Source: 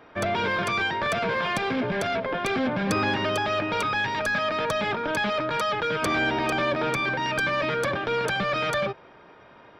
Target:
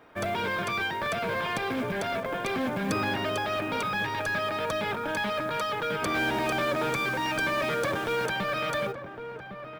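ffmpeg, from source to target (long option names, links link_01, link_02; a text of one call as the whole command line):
ffmpeg -i in.wav -filter_complex "[0:a]asettb=1/sr,asplit=3[link_01][link_02][link_03];[link_01]atrim=end=6.154[link_04];[link_02]atrim=start=6.15:end=8.26,asetpts=PTS-STARTPTS,afade=type=in:duration=0.004:curve=qsin,afade=type=out:start_time=2.106:duration=0.004:curve=qsin,aeval=exprs='val(0)+0.5*0.0211*sgn(val(0))':channel_layout=same[link_05];[link_03]atrim=start=8.256[link_06];[link_04][link_05]acrossfade=duration=0.004:curve1=hsin:curve2=qsin[link_07];[link_07][link_06]acrossfade=duration=0.004:curve1=qsin:curve2=hsin,acrusher=bits=6:mode=log:mix=0:aa=0.000001,asplit=2[link_08][link_09];[link_09]adelay=1108,volume=-9dB,highshelf=frequency=4000:gain=-24.9[link_10];[link_08][link_10]amix=inputs=2:normalize=0,volume=-4dB" out.wav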